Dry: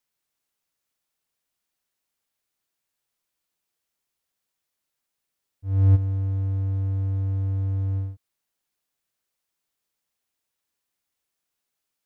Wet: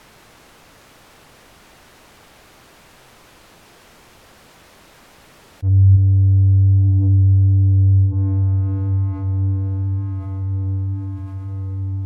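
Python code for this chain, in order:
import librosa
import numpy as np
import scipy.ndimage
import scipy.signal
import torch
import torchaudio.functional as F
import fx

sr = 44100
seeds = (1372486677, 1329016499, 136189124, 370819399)

p1 = fx.low_shelf(x, sr, hz=120.0, db=3.0)
p2 = p1 + fx.echo_diffused(p1, sr, ms=1120, feedback_pct=54, wet_db=-11, dry=0)
p3 = fx.env_lowpass_down(p2, sr, base_hz=330.0, full_db=-24.5)
p4 = fx.lowpass(p3, sr, hz=1200.0, slope=6)
p5 = fx.rider(p4, sr, range_db=5, speed_s=0.5)
p6 = p4 + (p5 * librosa.db_to_amplitude(0.0))
p7 = 10.0 ** (-6.0 / 20.0) * np.tanh(p6 / 10.0 ** (-6.0 / 20.0))
p8 = fx.env_flatten(p7, sr, amount_pct=50)
y = p8 * librosa.db_to_amplitude(1.5)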